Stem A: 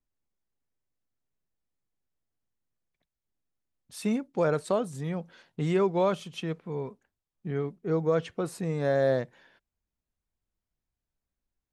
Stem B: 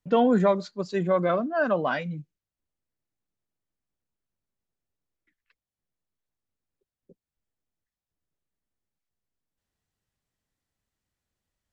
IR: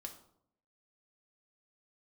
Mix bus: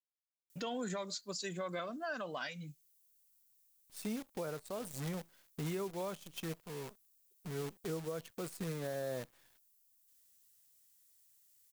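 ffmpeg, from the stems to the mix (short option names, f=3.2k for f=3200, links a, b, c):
-filter_complex "[0:a]acrusher=bits=7:dc=4:mix=0:aa=0.000001,tremolo=f=1.4:d=0.46,volume=-5.5dB[a];[1:a]highshelf=f=7.8k:g=4.5,alimiter=limit=-20.5dB:level=0:latency=1:release=232,crystalizer=i=9:c=0,adelay=500,volume=-8dB[b];[a][b]amix=inputs=2:normalize=0,highshelf=f=5.2k:g=7,alimiter=level_in=6.5dB:limit=-24dB:level=0:latency=1:release=414,volume=-6.5dB"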